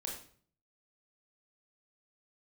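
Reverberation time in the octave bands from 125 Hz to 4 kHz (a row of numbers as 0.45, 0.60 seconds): 0.75, 0.65, 0.50, 0.45, 0.45, 0.40 seconds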